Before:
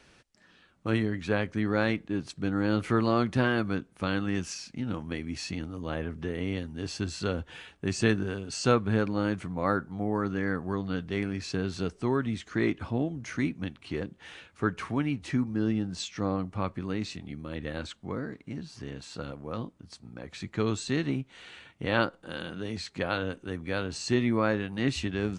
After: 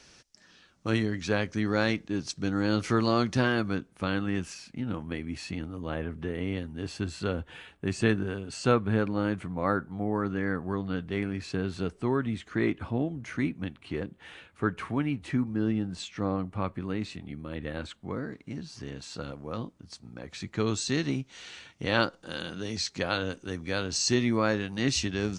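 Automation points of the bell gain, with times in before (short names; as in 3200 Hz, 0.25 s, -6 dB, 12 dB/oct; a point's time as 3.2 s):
bell 5700 Hz 0.92 oct
3.27 s +12 dB
3.73 s +4 dB
4.45 s -6.5 dB
17.8 s -6.5 dB
18.45 s +4 dB
20.53 s +4 dB
21.07 s +13 dB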